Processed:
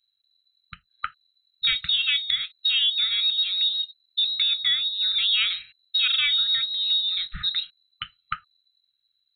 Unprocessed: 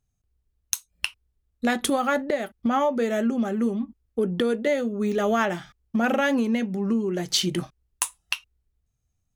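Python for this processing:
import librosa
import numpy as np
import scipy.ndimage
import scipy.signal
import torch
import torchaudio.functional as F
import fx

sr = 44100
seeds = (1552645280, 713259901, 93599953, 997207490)

y = fx.freq_invert(x, sr, carrier_hz=4000)
y = fx.brickwall_bandstop(y, sr, low_hz=190.0, high_hz=1200.0)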